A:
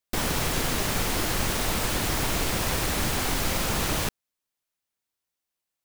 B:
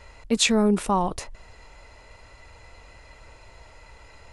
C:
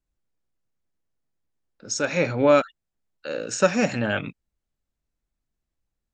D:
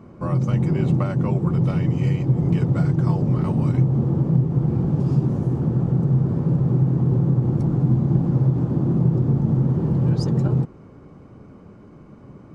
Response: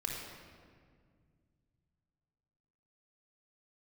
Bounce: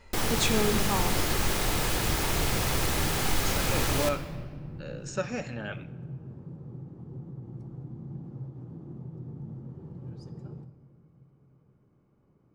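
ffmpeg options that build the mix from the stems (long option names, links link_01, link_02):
-filter_complex "[0:a]volume=-0.5dB,asplit=2[link_01][link_02];[link_02]volume=-6dB[link_03];[1:a]volume=-6.5dB,asplit=2[link_04][link_05];[link_05]volume=-5dB[link_06];[2:a]adelay=1550,volume=-8.5dB,asplit=2[link_07][link_08];[link_08]volume=-18dB[link_09];[3:a]volume=-20dB,asplit=2[link_10][link_11];[link_11]volume=-9.5dB[link_12];[4:a]atrim=start_sample=2205[link_13];[link_03][link_06][link_09][link_12]amix=inputs=4:normalize=0[link_14];[link_14][link_13]afir=irnorm=-1:irlink=0[link_15];[link_01][link_04][link_07][link_10][link_15]amix=inputs=5:normalize=0,flanger=delay=8.9:depth=9.6:regen=-78:speed=0.59:shape=triangular"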